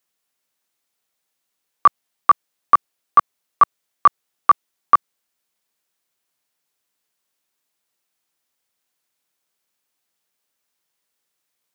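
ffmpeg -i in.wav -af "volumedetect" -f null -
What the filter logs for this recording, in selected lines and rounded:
mean_volume: -24.5 dB
max_volume: -2.5 dB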